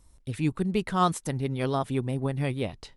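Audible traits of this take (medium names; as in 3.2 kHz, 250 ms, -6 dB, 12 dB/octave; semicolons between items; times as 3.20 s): noise floor -59 dBFS; spectral tilt -6.5 dB/octave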